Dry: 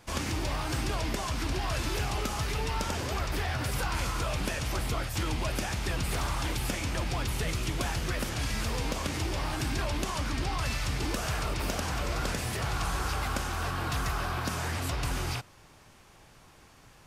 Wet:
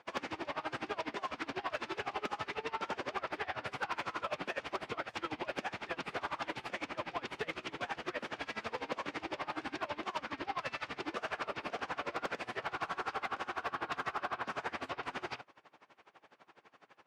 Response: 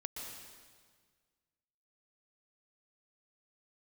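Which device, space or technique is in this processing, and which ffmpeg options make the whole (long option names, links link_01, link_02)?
helicopter radio: -af "highpass=360,lowpass=2600,aeval=exprs='val(0)*pow(10,-23*(0.5-0.5*cos(2*PI*12*n/s))/20)':channel_layout=same,asoftclip=type=hard:threshold=-30.5dB,volume=3dB"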